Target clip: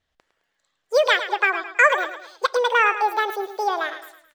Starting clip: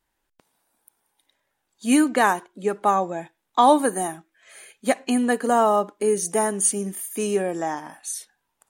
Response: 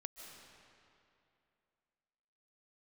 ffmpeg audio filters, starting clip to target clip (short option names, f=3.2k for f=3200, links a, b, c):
-filter_complex "[0:a]lowpass=2.7k,aecho=1:1:214|428|642|856:0.266|0.114|0.0492|0.0212,asplit=2[a][b];[1:a]atrim=start_sample=2205,atrim=end_sample=6615[c];[b][c]afir=irnorm=-1:irlink=0,volume=-12.5dB[d];[a][d]amix=inputs=2:normalize=0,asetrate=88200,aresample=44100"